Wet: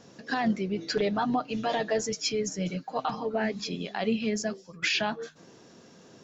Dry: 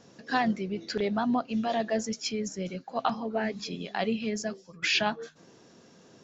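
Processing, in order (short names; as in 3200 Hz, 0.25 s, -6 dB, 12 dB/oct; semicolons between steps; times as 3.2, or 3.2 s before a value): 0.78–3.34 comb 6.6 ms, depth 66%; limiter -20 dBFS, peak gain reduction 10 dB; gain +2.5 dB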